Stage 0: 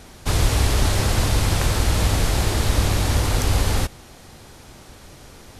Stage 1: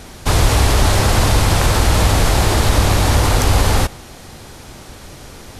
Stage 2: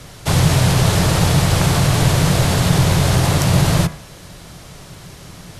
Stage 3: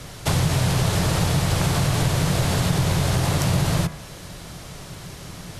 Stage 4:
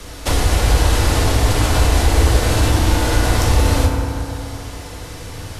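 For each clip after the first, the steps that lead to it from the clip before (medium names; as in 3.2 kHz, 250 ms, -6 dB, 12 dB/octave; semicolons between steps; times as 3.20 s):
dynamic bell 890 Hz, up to +4 dB, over -38 dBFS, Q 0.81; in parallel at -0.5 dB: peak limiter -14.5 dBFS, peak gain reduction 9 dB; on the sum: trim +1.5 dB
frequency shift -190 Hz; de-hum 75.78 Hz, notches 34; trim -1 dB
compression 2.5:1, threshold -20 dBFS, peak gain reduction 8 dB
frequency shift -77 Hz; FDN reverb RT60 2.8 s, high-frequency decay 0.35×, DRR -1 dB; trim +2.5 dB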